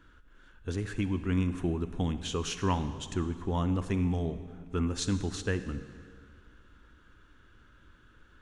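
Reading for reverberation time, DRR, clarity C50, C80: 2.0 s, 11.0 dB, 11.0 dB, 12.0 dB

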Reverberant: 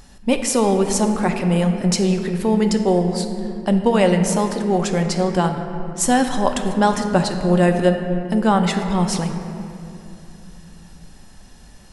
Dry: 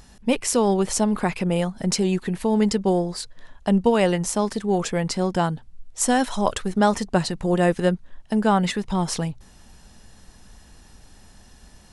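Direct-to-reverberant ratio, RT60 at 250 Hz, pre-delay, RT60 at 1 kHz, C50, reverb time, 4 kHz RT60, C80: 5.0 dB, 4.2 s, 4 ms, 2.7 s, 6.5 dB, 2.9 s, 1.6 s, 7.5 dB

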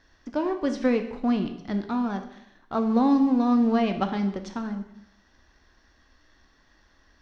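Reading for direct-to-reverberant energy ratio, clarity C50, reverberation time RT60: 6.5 dB, 10.0 dB, 0.80 s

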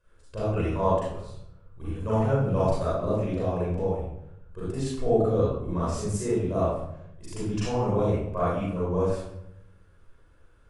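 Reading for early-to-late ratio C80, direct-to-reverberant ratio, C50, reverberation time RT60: 1.5 dB, -10.5 dB, -3.5 dB, 0.80 s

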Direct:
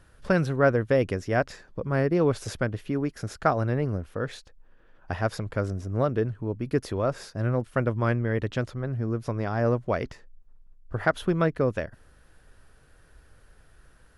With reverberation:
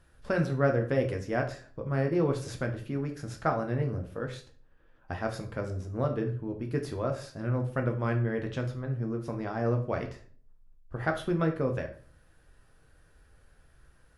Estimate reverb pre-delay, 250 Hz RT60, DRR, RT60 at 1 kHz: 7 ms, 0.60 s, 3.0 dB, 0.40 s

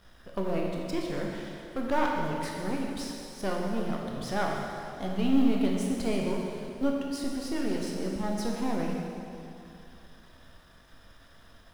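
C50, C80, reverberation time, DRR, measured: 0.5 dB, 2.0 dB, 2.7 s, -1.5 dB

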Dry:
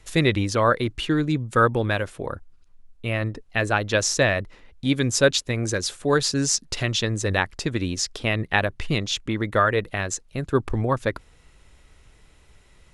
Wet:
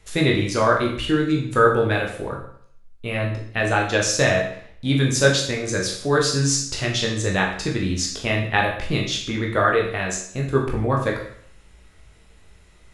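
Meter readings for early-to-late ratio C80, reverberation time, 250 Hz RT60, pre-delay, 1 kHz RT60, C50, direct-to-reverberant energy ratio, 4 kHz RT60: 9.0 dB, 0.60 s, 0.55 s, 15 ms, 0.60 s, 6.0 dB, -1.0 dB, 0.60 s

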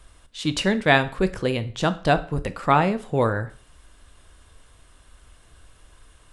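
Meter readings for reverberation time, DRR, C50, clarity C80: 0.45 s, 11.5 dB, 16.5 dB, 21.5 dB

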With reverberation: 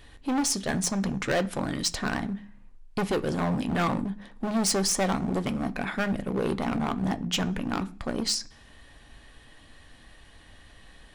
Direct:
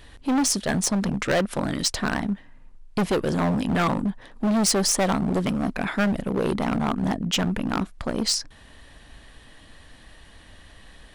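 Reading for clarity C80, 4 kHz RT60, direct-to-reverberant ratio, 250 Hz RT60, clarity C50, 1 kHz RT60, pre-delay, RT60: 24.5 dB, 0.55 s, 9.0 dB, 0.55 s, 20.5 dB, 0.40 s, 3 ms, 0.45 s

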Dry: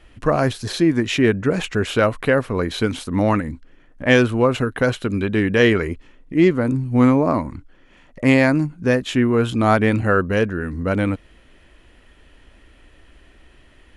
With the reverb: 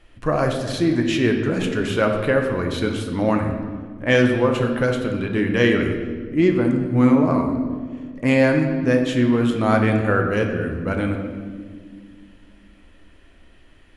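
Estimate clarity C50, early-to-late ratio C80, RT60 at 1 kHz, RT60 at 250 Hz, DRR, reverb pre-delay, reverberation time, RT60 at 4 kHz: 5.5 dB, 7.0 dB, 1.4 s, 3.0 s, 2.5 dB, 6 ms, 1.8 s, 1.2 s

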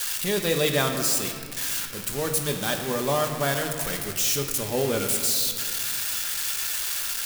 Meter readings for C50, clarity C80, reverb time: 5.5 dB, 6.5 dB, 2.1 s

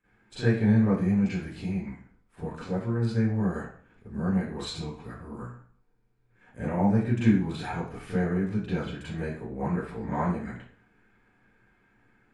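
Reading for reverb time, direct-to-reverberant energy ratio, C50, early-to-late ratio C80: 0.50 s, -15.0 dB, -1.0 dB, 5.0 dB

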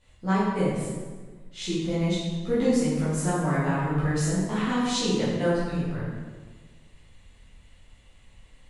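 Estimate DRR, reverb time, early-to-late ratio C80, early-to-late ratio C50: -11.0 dB, 1.4 s, 2.0 dB, -1.0 dB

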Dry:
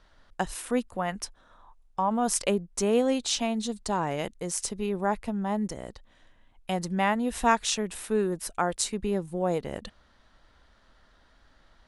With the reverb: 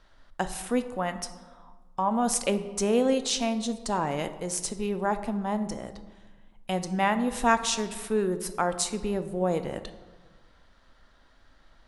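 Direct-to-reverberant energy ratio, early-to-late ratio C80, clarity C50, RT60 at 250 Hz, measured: 9.5 dB, 14.0 dB, 12.0 dB, 1.6 s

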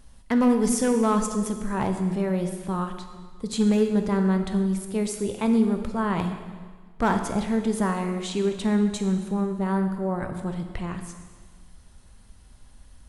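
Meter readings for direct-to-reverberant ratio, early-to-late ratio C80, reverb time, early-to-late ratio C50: 6.0 dB, 9.0 dB, 1.5 s, 7.5 dB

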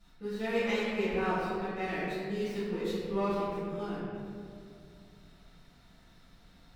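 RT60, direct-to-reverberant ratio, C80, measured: 2.4 s, -15.0 dB, -1.0 dB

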